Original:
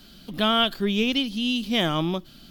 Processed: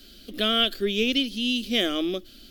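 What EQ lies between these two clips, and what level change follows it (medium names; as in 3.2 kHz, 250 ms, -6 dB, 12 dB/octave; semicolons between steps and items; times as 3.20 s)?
static phaser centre 380 Hz, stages 4; +2.0 dB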